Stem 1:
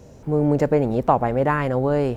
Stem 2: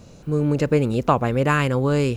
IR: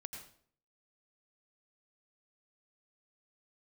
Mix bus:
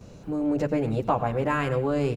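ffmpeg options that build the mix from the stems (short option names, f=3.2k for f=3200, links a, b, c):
-filter_complex "[0:a]volume=-8.5dB,asplit=2[a][b];[1:a]highshelf=f=4.1k:g=-6.5,adelay=9.8,volume=-3dB,asplit=2[c][d];[d]volume=-7dB[e];[b]apad=whole_len=95742[f];[c][f]sidechaincompress=threshold=-33dB:ratio=8:attack=16:release=404[g];[2:a]atrim=start_sample=2205[h];[e][h]afir=irnorm=-1:irlink=0[i];[a][g][i]amix=inputs=3:normalize=0"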